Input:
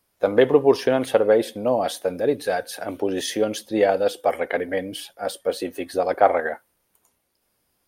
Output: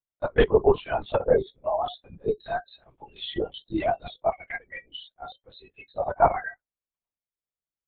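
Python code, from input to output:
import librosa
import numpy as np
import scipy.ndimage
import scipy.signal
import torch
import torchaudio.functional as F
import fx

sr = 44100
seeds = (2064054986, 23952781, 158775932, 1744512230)

y = fx.noise_reduce_blind(x, sr, reduce_db=28)
y = fx.lpc_vocoder(y, sr, seeds[0], excitation='whisper', order=10)
y = y * librosa.db_to_amplitude(-2.0)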